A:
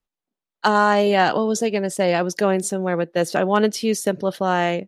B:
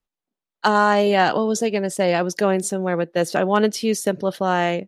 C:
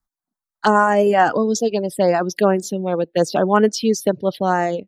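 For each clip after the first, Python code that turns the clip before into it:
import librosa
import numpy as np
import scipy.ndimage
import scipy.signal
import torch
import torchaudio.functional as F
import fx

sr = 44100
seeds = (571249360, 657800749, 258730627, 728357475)

y1 = x
y2 = fx.env_phaser(y1, sr, low_hz=470.0, high_hz=3900.0, full_db=-13.5)
y2 = fx.dereverb_blind(y2, sr, rt60_s=1.2)
y2 = fx.dynamic_eq(y2, sr, hz=2200.0, q=3.9, threshold_db=-44.0, ratio=4.0, max_db=-4)
y2 = y2 * librosa.db_to_amplitude(4.5)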